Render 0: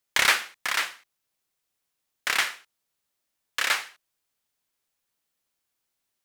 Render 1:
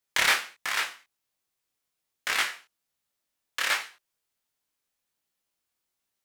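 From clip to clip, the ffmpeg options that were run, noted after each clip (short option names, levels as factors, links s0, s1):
-af "flanger=delay=18:depth=6.5:speed=1.3,volume=1.12"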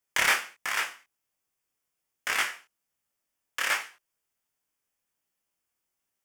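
-af "equalizer=f=4000:w=4.4:g=-11.5"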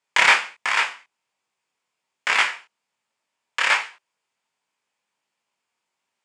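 -af "highpass=170,equalizer=f=310:t=q:w=4:g=-5,equalizer=f=940:t=q:w=4:g=7,equalizer=f=2400:t=q:w=4:g=4,equalizer=f=4000:t=q:w=4:g=4,equalizer=f=5900:t=q:w=4:g=-6,lowpass=f=7500:w=0.5412,lowpass=f=7500:w=1.3066,volume=2.11"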